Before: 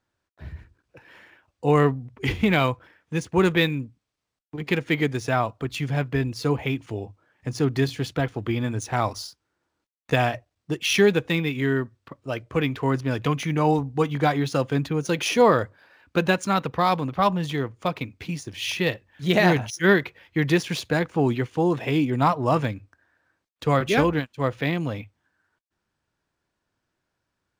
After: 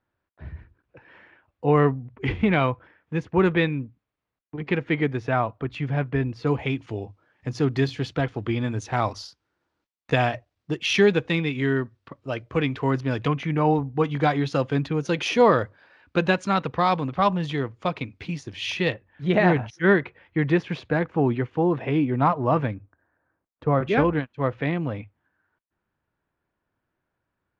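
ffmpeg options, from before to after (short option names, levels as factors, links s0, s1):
-af "asetnsamples=n=441:p=0,asendcmd='6.47 lowpass f 4900;13.28 lowpass f 2600;14.04 lowpass f 4600;18.92 lowpass f 2100;22.75 lowpass f 1200;23.83 lowpass f 2200',lowpass=2400"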